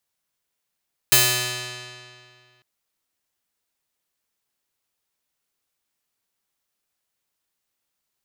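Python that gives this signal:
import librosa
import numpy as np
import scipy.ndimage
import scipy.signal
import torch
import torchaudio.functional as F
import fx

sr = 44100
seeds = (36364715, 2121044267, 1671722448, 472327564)

y = fx.pluck(sr, length_s=1.5, note=47, decay_s=2.22, pick=0.46, brightness='bright')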